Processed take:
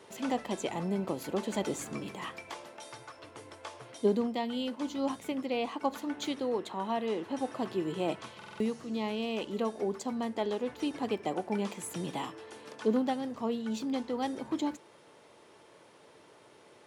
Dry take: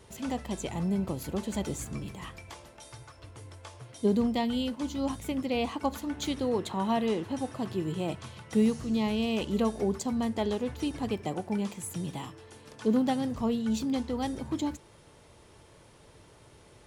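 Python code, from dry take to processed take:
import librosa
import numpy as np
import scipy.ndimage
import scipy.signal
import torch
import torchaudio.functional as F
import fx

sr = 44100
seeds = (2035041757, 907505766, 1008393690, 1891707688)

y = scipy.signal.sosfilt(scipy.signal.butter(2, 280.0, 'highpass', fs=sr, output='sos'), x)
y = fx.high_shelf(y, sr, hz=5200.0, db=-8.5)
y = fx.rider(y, sr, range_db=5, speed_s=0.5)
y = fx.buffer_glitch(y, sr, at_s=(8.37,), block=2048, repeats=4)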